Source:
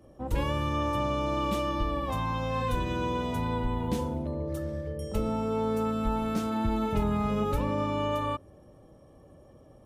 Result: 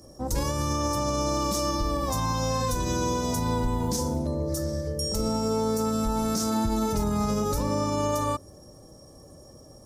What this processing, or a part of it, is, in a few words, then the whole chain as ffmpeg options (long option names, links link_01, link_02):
over-bright horn tweeter: -af "highshelf=frequency=4000:width_type=q:width=3:gain=11.5,alimiter=limit=-22dB:level=0:latency=1:release=45,volume=4.5dB"